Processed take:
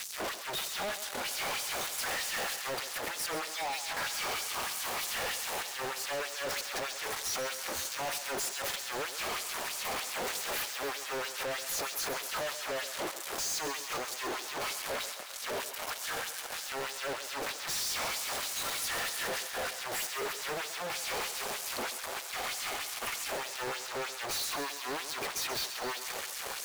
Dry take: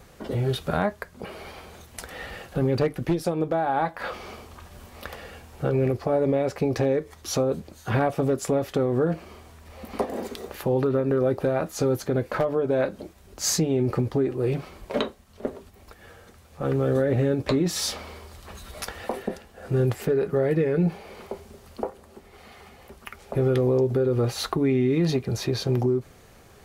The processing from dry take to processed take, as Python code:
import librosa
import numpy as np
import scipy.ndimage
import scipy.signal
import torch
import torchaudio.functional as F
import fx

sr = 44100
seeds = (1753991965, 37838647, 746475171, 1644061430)

y = fx.fuzz(x, sr, gain_db=48.0, gate_db=-50.0)
y = fx.filter_lfo_highpass(y, sr, shape='sine', hz=3.2, low_hz=540.0, high_hz=7000.0, q=1.2)
y = np.clip(y, -10.0 ** (-26.0 / 20.0), 10.0 ** (-26.0 / 20.0))
y = fx.echo_thinned(y, sr, ms=133, feedback_pct=79, hz=420.0, wet_db=-10.5)
y = y * librosa.db_to_amplitude(-7.5)